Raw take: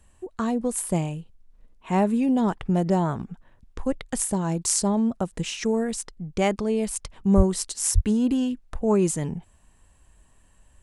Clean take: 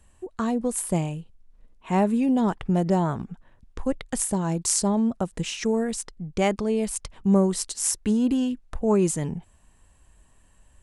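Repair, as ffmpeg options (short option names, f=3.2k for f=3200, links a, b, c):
-filter_complex "[0:a]asplit=3[a][b][c];[a]afade=t=out:st=7.36:d=0.02[d];[b]highpass=f=140:w=0.5412,highpass=f=140:w=1.3066,afade=t=in:st=7.36:d=0.02,afade=t=out:st=7.48:d=0.02[e];[c]afade=t=in:st=7.48:d=0.02[f];[d][e][f]amix=inputs=3:normalize=0,asplit=3[g][h][i];[g]afade=t=out:st=7.94:d=0.02[j];[h]highpass=f=140:w=0.5412,highpass=f=140:w=1.3066,afade=t=in:st=7.94:d=0.02,afade=t=out:st=8.06:d=0.02[k];[i]afade=t=in:st=8.06:d=0.02[l];[j][k][l]amix=inputs=3:normalize=0"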